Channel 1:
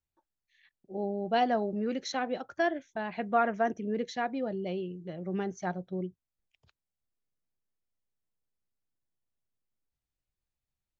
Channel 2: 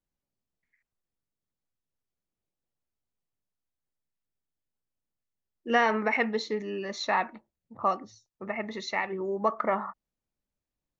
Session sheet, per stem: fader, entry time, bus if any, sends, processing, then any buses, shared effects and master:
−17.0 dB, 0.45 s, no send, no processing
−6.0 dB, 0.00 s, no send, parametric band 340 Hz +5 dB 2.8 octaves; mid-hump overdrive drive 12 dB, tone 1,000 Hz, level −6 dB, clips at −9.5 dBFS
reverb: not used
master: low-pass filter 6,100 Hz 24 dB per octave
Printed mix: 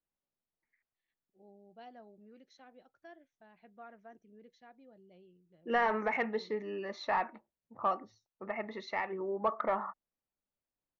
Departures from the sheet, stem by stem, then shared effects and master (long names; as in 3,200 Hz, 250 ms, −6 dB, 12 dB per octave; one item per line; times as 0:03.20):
stem 1 −17.0 dB → −25.5 dB
stem 2: missing parametric band 340 Hz +5 dB 2.8 octaves